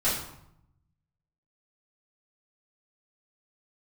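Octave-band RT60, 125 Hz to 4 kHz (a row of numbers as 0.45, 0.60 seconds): 1.4, 1.0, 0.75, 0.80, 0.60, 0.55 seconds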